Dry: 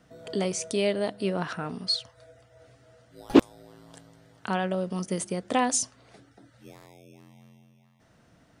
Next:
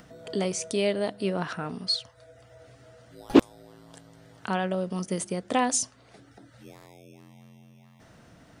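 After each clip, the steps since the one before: upward compressor, threshold -45 dBFS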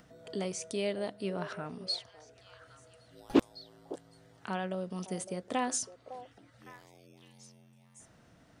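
repeats whose band climbs or falls 557 ms, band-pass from 570 Hz, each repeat 1.4 oct, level -10 dB; trim -7.5 dB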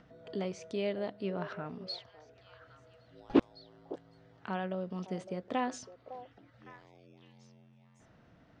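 distance through air 190 m

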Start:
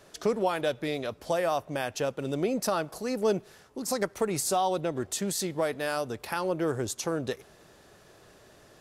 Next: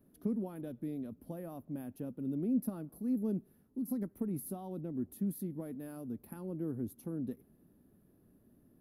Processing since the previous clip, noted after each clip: FFT filter 130 Hz 0 dB, 250 Hz +10 dB, 400 Hz -7 dB, 620 Hz -14 dB, 7.9 kHz -29 dB, 11 kHz 0 dB; trim -7.5 dB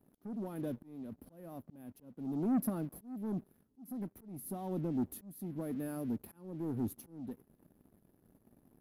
waveshaping leveller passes 2; slow attack 542 ms; trim -2 dB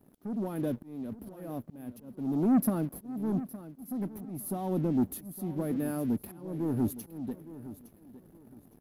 feedback delay 863 ms, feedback 28%, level -15 dB; trim +7 dB

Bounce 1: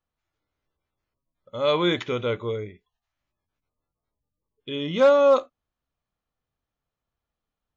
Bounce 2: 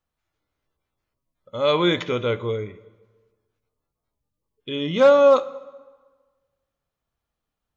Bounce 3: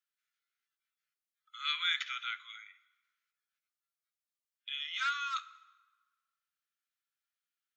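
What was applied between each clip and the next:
plate-style reverb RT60 1.4 s, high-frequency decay 0.75×, DRR 16 dB; trim +2.5 dB
steep high-pass 1.3 kHz 72 dB/octave; trim -5 dB

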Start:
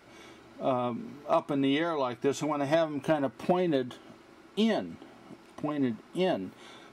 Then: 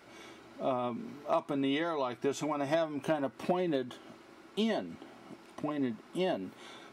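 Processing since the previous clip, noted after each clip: bass shelf 110 Hz -7.5 dB; in parallel at 0 dB: compression, threshold -34 dBFS, peak gain reduction 13 dB; on the sum: trim -6 dB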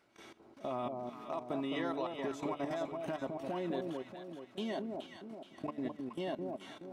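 level held to a coarse grid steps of 17 dB; echo whose repeats swap between lows and highs 212 ms, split 920 Hz, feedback 66%, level -3 dB; trim -3 dB

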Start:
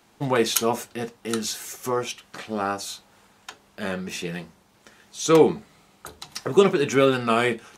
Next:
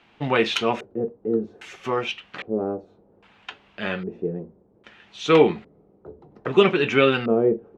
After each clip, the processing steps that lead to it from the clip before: LFO low-pass square 0.62 Hz 440–2800 Hz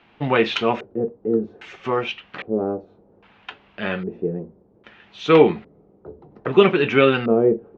distance through air 150 m; trim +3 dB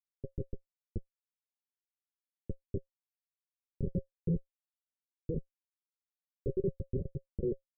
random holes in the spectrogram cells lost 85%; Schmitt trigger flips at -25 dBFS; rippled Chebyshev low-pass 560 Hz, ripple 9 dB; trim +3.5 dB

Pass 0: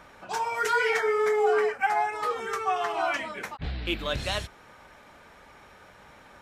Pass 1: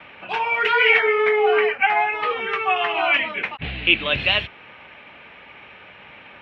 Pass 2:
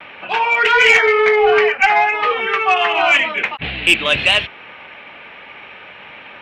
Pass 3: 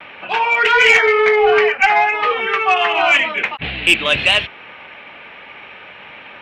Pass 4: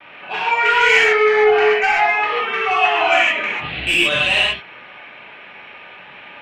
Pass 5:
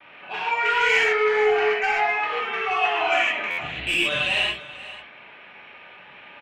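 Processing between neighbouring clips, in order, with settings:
FFT filter 1.5 kHz 0 dB, 2.7 kHz +14 dB, 7 kHz -28 dB; gate with hold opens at -42 dBFS; high-pass 86 Hz 12 dB/octave; trim +5 dB
bass shelf 190 Hz -8 dB; saturation -10 dBFS, distortion -18 dB; vibrato 0.35 Hz 11 cents; trim +7 dB
no audible change
gated-style reverb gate 170 ms flat, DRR -7.5 dB; trim -9.5 dB
delay 488 ms -16.5 dB; buffer glitch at 3.50 s, samples 512, times 6; trim -6.5 dB

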